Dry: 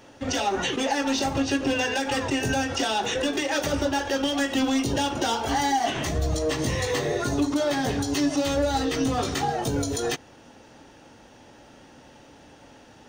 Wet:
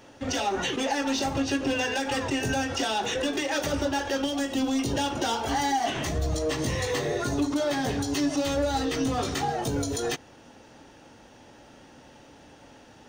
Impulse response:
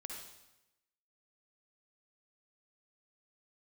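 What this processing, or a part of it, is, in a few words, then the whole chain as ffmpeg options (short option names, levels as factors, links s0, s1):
parallel distortion: -filter_complex "[0:a]asplit=2[s0][s1];[s1]asoftclip=type=hard:threshold=0.0316,volume=0.251[s2];[s0][s2]amix=inputs=2:normalize=0,asettb=1/sr,asplit=3[s3][s4][s5];[s3]atrim=end=4.254[s6];[s4]atrim=start=4.25:end=4.79,asetpts=PTS-STARTPTS,afade=t=in:d=0.004:c=qsin,afade=t=out:st=0.536:d=0.004:c=qsin,equalizer=f=1800:t=o:w=1.8:g=-6[s7];[s5]atrim=start=4.786[s8];[s6][s7]acrossfade=d=0.004:c1=hsin:c2=qsin[s9];[s9][s8]acrossfade=d=0.004:c1=qsin:c2=hsin,volume=0.708"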